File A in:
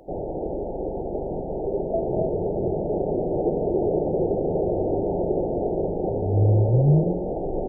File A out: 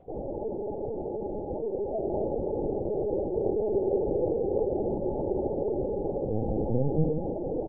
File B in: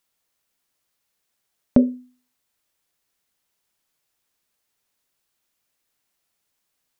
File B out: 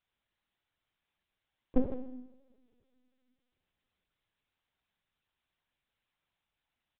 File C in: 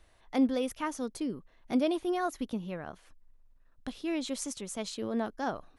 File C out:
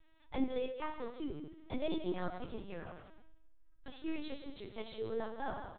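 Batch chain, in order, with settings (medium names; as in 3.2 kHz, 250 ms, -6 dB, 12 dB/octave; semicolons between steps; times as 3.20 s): treble shelf 2.6 kHz +3 dB; comb 2.3 ms, depth 35%; delay 163 ms -11.5 dB; two-slope reverb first 0.86 s, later 2.7 s, from -23 dB, DRR 4 dB; LPC vocoder at 8 kHz pitch kept; trim -7.5 dB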